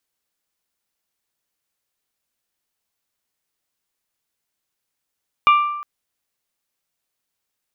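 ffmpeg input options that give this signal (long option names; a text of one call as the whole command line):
ffmpeg -f lavfi -i "aevalsrc='0.398*pow(10,-3*t/0.98)*sin(2*PI*1180*t)+0.158*pow(10,-3*t/0.603)*sin(2*PI*2360*t)+0.0631*pow(10,-3*t/0.531)*sin(2*PI*2832*t)+0.0251*pow(10,-3*t/0.454)*sin(2*PI*3540*t)':duration=0.36:sample_rate=44100" out.wav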